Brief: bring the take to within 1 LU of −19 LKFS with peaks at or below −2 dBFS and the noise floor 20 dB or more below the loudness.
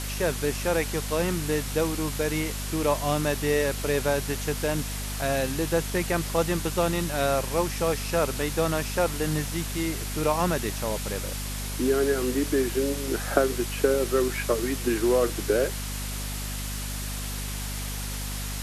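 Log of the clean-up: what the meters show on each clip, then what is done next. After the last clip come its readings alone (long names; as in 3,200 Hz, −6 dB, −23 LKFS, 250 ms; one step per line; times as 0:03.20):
mains hum 50 Hz; hum harmonics up to 250 Hz; level of the hum −31 dBFS; background noise floor −32 dBFS; target noise floor −47 dBFS; integrated loudness −27.0 LKFS; sample peak −6.0 dBFS; target loudness −19.0 LKFS
→ hum removal 50 Hz, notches 5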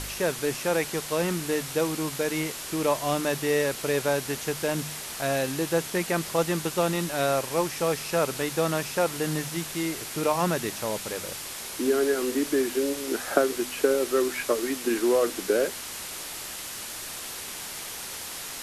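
mains hum none found; background noise floor −37 dBFS; target noise floor −48 dBFS
→ broadband denoise 11 dB, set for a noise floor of −37 dBFS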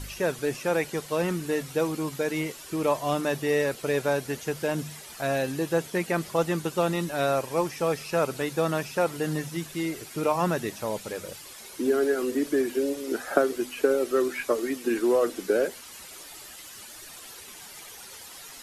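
background noise floor −45 dBFS; target noise floor −48 dBFS
→ broadband denoise 6 dB, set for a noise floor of −45 dBFS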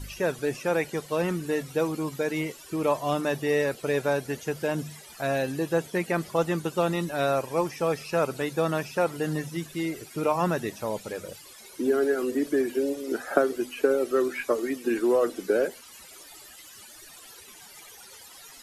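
background noise floor −48 dBFS; integrated loudness −27.5 LKFS; sample peak −6.0 dBFS; target loudness −19.0 LKFS
→ level +8.5 dB
brickwall limiter −2 dBFS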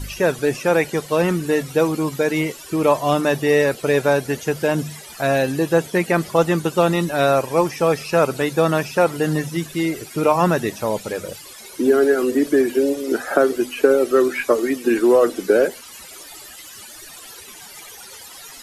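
integrated loudness −19.0 LKFS; sample peak −2.0 dBFS; background noise floor −40 dBFS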